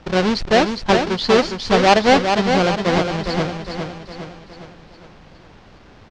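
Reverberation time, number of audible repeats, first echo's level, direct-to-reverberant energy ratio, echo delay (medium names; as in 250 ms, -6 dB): no reverb, 5, -6.0 dB, no reverb, 409 ms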